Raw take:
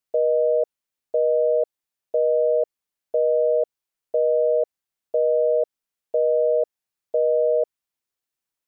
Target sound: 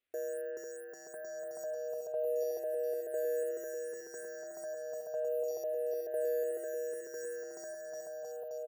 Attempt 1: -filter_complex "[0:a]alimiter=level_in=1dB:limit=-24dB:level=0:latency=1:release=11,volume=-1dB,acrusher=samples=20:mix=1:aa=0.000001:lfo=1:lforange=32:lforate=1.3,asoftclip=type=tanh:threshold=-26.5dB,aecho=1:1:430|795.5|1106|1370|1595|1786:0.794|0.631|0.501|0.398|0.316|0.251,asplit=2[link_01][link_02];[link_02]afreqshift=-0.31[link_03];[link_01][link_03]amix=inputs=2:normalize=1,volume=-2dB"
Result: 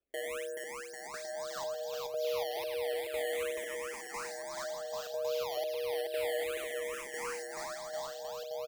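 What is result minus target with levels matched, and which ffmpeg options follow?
sample-and-hold swept by an LFO: distortion +17 dB
-filter_complex "[0:a]alimiter=level_in=1dB:limit=-24dB:level=0:latency=1:release=11,volume=-1dB,acrusher=samples=4:mix=1:aa=0.000001:lfo=1:lforange=6.4:lforate=1.3,asoftclip=type=tanh:threshold=-26.5dB,aecho=1:1:430|795.5|1106|1370|1595|1786:0.794|0.631|0.501|0.398|0.316|0.251,asplit=2[link_01][link_02];[link_02]afreqshift=-0.31[link_03];[link_01][link_03]amix=inputs=2:normalize=1,volume=-2dB"

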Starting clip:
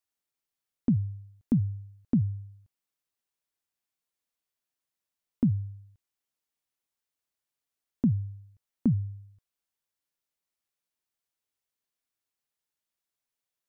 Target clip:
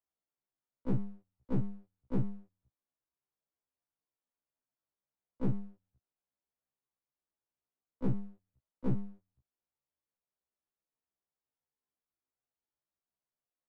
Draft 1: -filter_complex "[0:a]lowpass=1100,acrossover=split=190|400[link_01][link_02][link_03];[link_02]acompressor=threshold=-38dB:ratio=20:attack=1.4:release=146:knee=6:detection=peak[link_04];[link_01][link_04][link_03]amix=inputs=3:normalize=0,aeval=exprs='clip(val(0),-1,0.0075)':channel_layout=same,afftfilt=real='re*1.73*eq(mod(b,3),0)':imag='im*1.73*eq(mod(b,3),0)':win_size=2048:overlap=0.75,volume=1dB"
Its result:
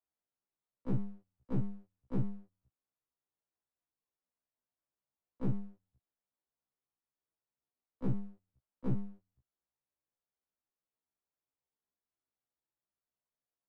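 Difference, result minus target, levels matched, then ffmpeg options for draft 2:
downward compressor: peak gain reduction +10.5 dB
-filter_complex "[0:a]lowpass=1100,acrossover=split=190|400[link_01][link_02][link_03];[link_02]acompressor=threshold=-27dB:ratio=20:attack=1.4:release=146:knee=6:detection=peak[link_04];[link_01][link_04][link_03]amix=inputs=3:normalize=0,aeval=exprs='clip(val(0),-1,0.0075)':channel_layout=same,afftfilt=real='re*1.73*eq(mod(b,3),0)':imag='im*1.73*eq(mod(b,3),0)':win_size=2048:overlap=0.75,volume=1dB"

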